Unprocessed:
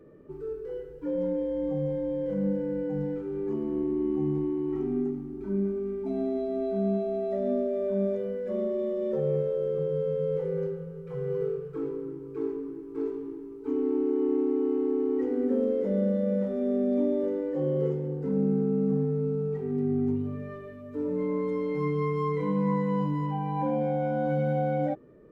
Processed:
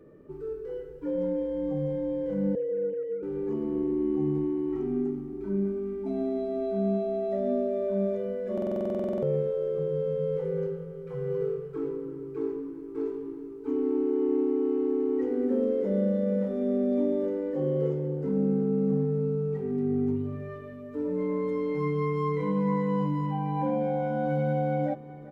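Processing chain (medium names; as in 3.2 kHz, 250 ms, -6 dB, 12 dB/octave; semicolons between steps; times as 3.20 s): 2.55–3.23 s: formants replaced by sine waves; on a send: feedback delay 386 ms, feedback 54%, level -17.5 dB; on the sum: buffer glitch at 8.53 s, samples 2048, times 14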